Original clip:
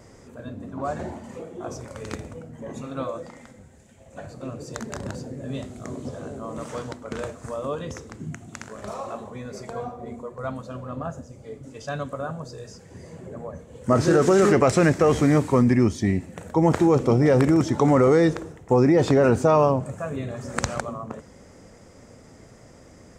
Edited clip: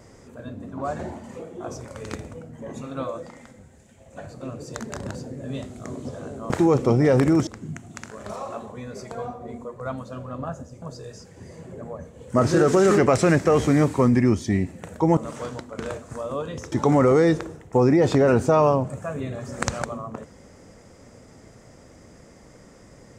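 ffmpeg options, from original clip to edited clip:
-filter_complex "[0:a]asplit=6[s0][s1][s2][s3][s4][s5];[s0]atrim=end=6.502[s6];[s1]atrim=start=16.708:end=17.682[s7];[s2]atrim=start=8.048:end=11.402[s8];[s3]atrim=start=12.358:end=16.712[s9];[s4]atrim=start=6.498:end=8.052[s10];[s5]atrim=start=17.678[s11];[s6][s7]acrossfade=d=0.004:c1=hsin:c2=hsin[s12];[s12][s8]acrossfade=d=0.004:c1=hsin:c2=hsin[s13];[s13][s9]acrossfade=d=0.004:c1=hsin:c2=hsin[s14];[s14][s10]acrossfade=d=0.004:c1=hsin:c2=hsin[s15];[s15][s11]acrossfade=d=0.004:c1=hsin:c2=hsin"

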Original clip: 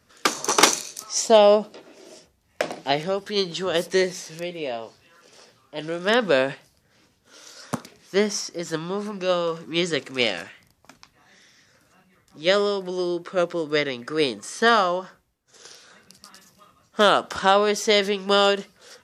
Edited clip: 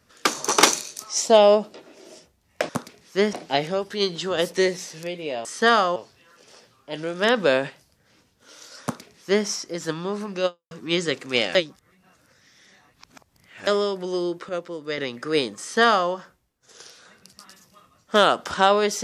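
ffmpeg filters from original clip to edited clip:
-filter_complex "[0:a]asplit=10[s0][s1][s2][s3][s4][s5][s6][s7][s8][s9];[s0]atrim=end=2.692[s10];[s1]atrim=start=7.668:end=8.312[s11];[s2]atrim=start=2.688:end=4.812[s12];[s3]atrim=start=14.448:end=14.962[s13];[s4]atrim=start=4.808:end=9.56,asetpts=PTS-STARTPTS,afade=t=out:st=4.502:d=0.25:c=exp[s14];[s5]atrim=start=9.56:end=10.402,asetpts=PTS-STARTPTS,afade=t=in:d=0.004:c=hsin[s15];[s6]atrim=start=10.398:end=12.522,asetpts=PTS-STARTPTS,areverse[s16];[s7]atrim=start=12.518:end=13.342[s17];[s8]atrim=start=13.338:end=13.832,asetpts=PTS-STARTPTS,volume=0.447[s18];[s9]atrim=start=13.828[s19];[s10][s11]acrossfade=d=0.004:c1=hsin:c2=hsin[s20];[s20][s12]acrossfade=d=0.004:c1=hsin:c2=hsin[s21];[s21][s13]acrossfade=d=0.004:c1=hsin:c2=hsin[s22];[s14][s15]concat=n=2:v=0:a=1[s23];[s22][s23]acrossfade=d=0.004:c1=hsin:c2=hsin[s24];[s24][s16]acrossfade=d=0.004:c1=hsin:c2=hsin[s25];[s25][s17]acrossfade=d=0.004:c1=hsin:c2=hsin[s26];[s26][s18]acrossfade=d=0.004:c1=hsin:c2=hsin[s27];[s27][s19]acrossfade=d=0.004:c1=hsin:c2=hsin"

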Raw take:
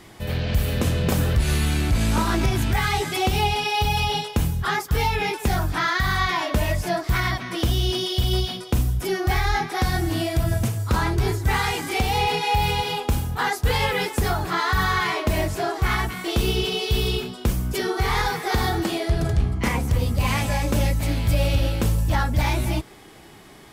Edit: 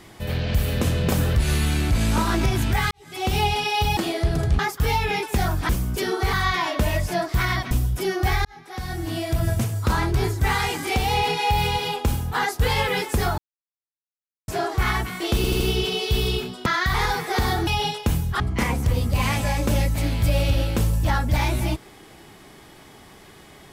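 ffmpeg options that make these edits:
-filter_complex "[0:a]asplit=17[s0][s1][s2][s3][s4][s5][s6][s7][s8][s9][s10][s11][s12][s13][s14][s15][s16];[s0]atrim=end=2.91,asetpts=PTS-STARTPTS,afade=t=out:st=2.906:d=0.004:c=hsin[s17];[s1]atrim=start=2.91:end=3.972,asetpts=PTS-STARTPTS,afade=t=in:d=0.41:c=qua[s18];[s2]atrim=start=18.828:end=19.452[s19];[s3]atrim=start=4.698:end=5.802[s20];[s4]atrim=start=17.458:end=18.102[s21];[s5]atrim=start=6.078:end=7.462[s22];[s6]atrim=start=8.748:end=9.49,asetpts=PTS-STARTPTS,afade=t=out:st=0.738:d=0.004:c=hsin[s23];[s7]atrim=start=9.49:end=14.42,asetpts=PTS-STARTPTS,afade=t=in:d=1.03,afade=t=out:st=4.926:d=0.004:c=hsin[s24];[s8]atrim=start=14.42:end=15.52,asetpts=PTS-STARTPTS,volume=0[s25];[s9]atrim=start=15.52:end=16.482,asetpts=PTS-STARTPTS,afade=t=in:d=0.004:c=hsin[s26];[s10]atrim=start=16.398:end=16.482[s27];[s11]atrim=start=16.398:end=16.482[s28];[s12]atrim=start=16.398:end=17.462[s29];[s13]atrim=start=5.798:end=6.082[s30];[s14]atrim=start=18.098:end=18.832[s31];[s15]atrim=start=3.968:end=4.702[s32];[s16]atrim=start=19.448[s33];[s17][s18]concat=n=2:v=0:a=1[s34];[s34][s19]acrossfade=d=0.004:c1=hsin:c2=hsin[s35];[s35][s20]acrossfade=d=0.004:c1=hsin:c2=hsin[s36];[s36][s21]acrossfade=d=0.004:c1=hsin:c2=hsin[s37];[s37][s22]acrossfade=d=0.004:c1=hsin:c2=hsin[s38];[s23][s24][s25][s26]concat=n=4:v=0:a=1[s39];[s38][s39]acrossfade=d=0.004:c1=hsin:c2=hsin[s40];[s40][s27]acrossfade=d=0.004:c1=hsin:c2=hsin[s41];[s41][s28]acrossfade=d=0.004:c1=hsin:c2=hsin[s42];[s42][s29]acrossfade=d=0.004:c1=hsin:c2=hsin[s43];[s43][s30]acrossfade=d=0.004:c1=hsin:c2=hsin[s44];[s44][s31]acrossfade=d=0.004:c1=hsin:c2=hsin[s45];[s45][s32]acrossfade=d=0.004:c1=hsin:c2=hsin[s46];[s46][s33]acrossfade=d=0.004:c1=hsin:c2=hsin"

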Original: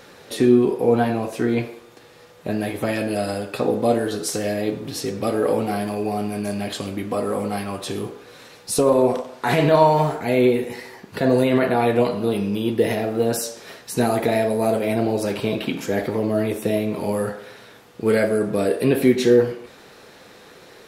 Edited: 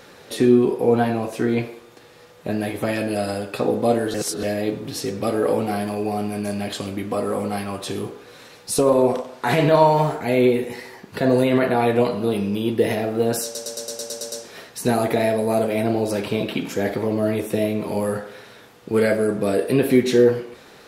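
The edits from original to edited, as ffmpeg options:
-filter_complex "[0:a]asplit=11[s0][s1][s2][s3][s4][s5][s6][s7][s8][s9][s10];[s0]atrim=end=4.142[s11];[s1]atrim=start=4.138:end=4.432,asetpts=PTS-STARTPTS,areverse[s12];[s2]atrim=start=4.428:end=13.552[s13];[s3]atrim=start=13.438:end=13.552[s14];[s4]atrim=start=13.438:end=13.552[s15];[s5]atrim=start=13.438:end=13.552[s16];[s6]atrim=start=13.438:end=13.552[s17];[s7]atrim=start=13.438:end=13.552[s18];[s8]atrim=start=13.438:end=13.552[s19];[s9]atrim=start=13.438:end=13.552[s20];[s10]atrim=start=13.438[s21];[s11][s12]acrossfade=d=0.004:c1=hsin:c2=hsin[s22];[s22][s13]acrossfade=d=0.004:c1=hsin:c2=hsin[s23];[s23][s14]acrossfade=d=0.004:c1=hsin:c2=hsin[s24];[s24][s15]acrossfade=d=0.004:c1=hsin:c2=hsin[s25];[s25][s16]acrossfade=d=0.004:c1=hsin:c2=hsin[s26];[s26][s17]acrossfade=d=0.004:c1=hsin:c2=hsin[s27];[s27][s18]acrossfade=d=0.004:c1=hsin:c2=hsin[s28];[s28][s19]acrossfade=d=0.004:c1=hsin:c2=hsin[s29];[s29][s20]acrossfade=d=0.004:c1=hsin:c2=hsin[s30];[s30][s21]acrossfade=d=0.004:c1=hsin:c2=hsin"

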